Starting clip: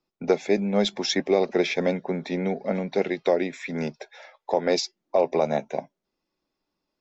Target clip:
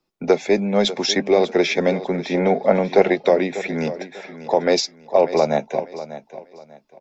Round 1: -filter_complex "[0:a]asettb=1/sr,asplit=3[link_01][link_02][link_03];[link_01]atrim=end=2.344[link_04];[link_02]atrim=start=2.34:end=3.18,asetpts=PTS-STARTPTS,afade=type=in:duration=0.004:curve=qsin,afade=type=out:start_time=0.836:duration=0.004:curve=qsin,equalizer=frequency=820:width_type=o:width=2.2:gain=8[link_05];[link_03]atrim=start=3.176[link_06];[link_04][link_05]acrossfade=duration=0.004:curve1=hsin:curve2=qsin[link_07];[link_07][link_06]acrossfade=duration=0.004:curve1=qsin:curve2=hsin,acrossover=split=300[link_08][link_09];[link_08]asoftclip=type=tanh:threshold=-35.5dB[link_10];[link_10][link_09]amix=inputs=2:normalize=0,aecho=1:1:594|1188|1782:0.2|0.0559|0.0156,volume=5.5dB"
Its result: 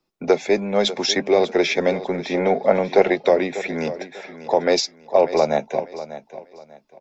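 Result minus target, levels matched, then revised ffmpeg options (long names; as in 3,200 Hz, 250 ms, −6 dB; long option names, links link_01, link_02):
soft clipping: distortion +8 dB
-filter_complex "[0:a]asettb=1/sr,asplit=3[link_01][link_02][link_03];[link_01]atrim=end=2.344[link_04];[link_02]atrim=start=2.34:end=3.18,asetpts=PTS-STARTPTS,afade=type=in:duration=0.004:curve=qsin,afade=type=out:start_time=0.836:duration=0.004:curve=qsin,equalizer=frequency=820:width_type=o:width=2.2:gain=8[link_05];[link_03]atrim=start=3.176[link_06];[link_04][link_05]acrossfade=duration=0.004:curve1=hsin:curve2=qsin[link_07];[link_07][link_06]acrossfade=duration=0.004:curve1=qsin:curve2=hsin,acrossover=split=300[link_08][link_09];[link_08]asoftclip=type=tanh:threshold=-26dB[link_10];[link_10][link_09]amix=inputs=2:normalize=0,aecho=1:1:594|1188|1782:0.2|0.0559|0.0156,volume=5.5dB"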